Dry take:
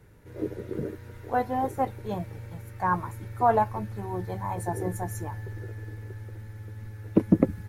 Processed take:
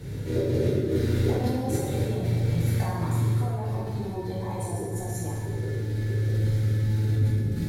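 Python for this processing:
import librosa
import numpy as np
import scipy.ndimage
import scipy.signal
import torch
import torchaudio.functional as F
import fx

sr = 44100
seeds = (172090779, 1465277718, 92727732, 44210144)

y = fx.graphic_eq(x, sr, hz=(125, 250, 500, 1000, 4000, 8000), db=(9, 6, 4, -6, 10, 4))
y = fx.over_compress(y, sr, threshold_db=-34.0, ratio=-1.0)
y = fx.rev_plate(y, sr, seeds[0], rt60_s=1.5, hf_ratio=0.8, predelay_ms=0, drr_db=-5.5)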